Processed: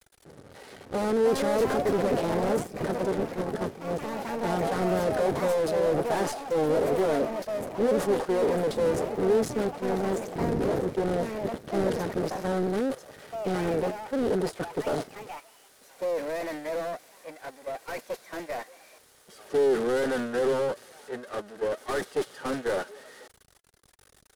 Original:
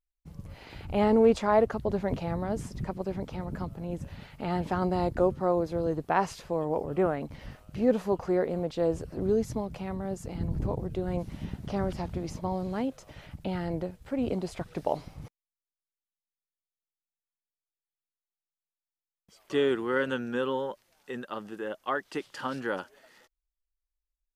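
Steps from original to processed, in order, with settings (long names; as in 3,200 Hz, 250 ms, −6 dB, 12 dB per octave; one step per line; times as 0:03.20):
converter with a step at zero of −34.5 dBFS
noise gate −30 dBFS, range −21 dB
high-shelf EQ 9,500 Hz −7.5 dB
notch comb filter 340 Hz
half-wave rectification
mid-hump overdrive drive 39 dB, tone 1,700 Hz, clips at −11.5 dBFS
graphic EQ with 15 bands 400 Hz +7 dB, 1,000 Hz −6 dB, 2,500 Hz −7 dB, 10,000 Hz +10 dB
delay with pitch and tempo change per echo 509 ms, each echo +4 semitones, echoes 2, each echo −6 dB
level −7.5 dB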